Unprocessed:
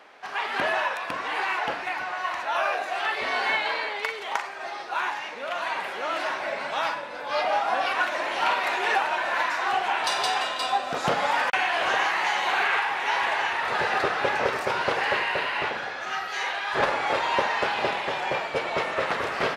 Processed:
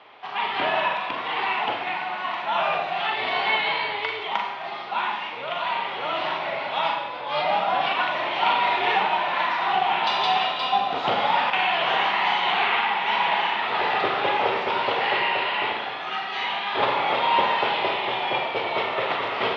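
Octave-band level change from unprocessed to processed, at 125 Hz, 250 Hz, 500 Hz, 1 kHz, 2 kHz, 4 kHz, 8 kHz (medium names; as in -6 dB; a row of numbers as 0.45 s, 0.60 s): +0.5 dB, +2.0 dB, +1.0 dB, +3.5 dB, 0.0 dB, +5.0 dB, under -15 dB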